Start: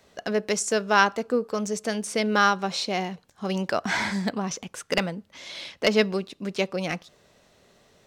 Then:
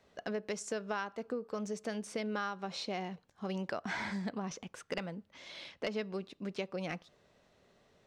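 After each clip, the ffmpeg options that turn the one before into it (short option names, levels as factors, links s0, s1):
-af "lowpass=f=3400:p=1,acompressor=threshold=0.0501:ratio=6,volume=0.422"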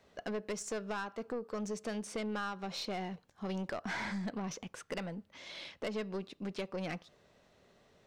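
-af "aeval=exprs='(tanh(44.7*val(0)+0.2)-tanh(0.2))/44.7':c=same,volume=1.26"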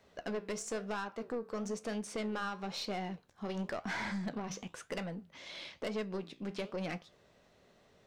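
-af "flanger=delay=9.2:depth=9.2:regen=-70:speed=1:shape=sinusoidal,volume=59.6,asoftclip=hard,volume=0.0168,volume=1.68"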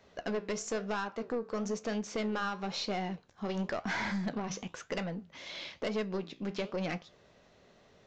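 -af "aresample=16000,aresample=44100,volume=1.5"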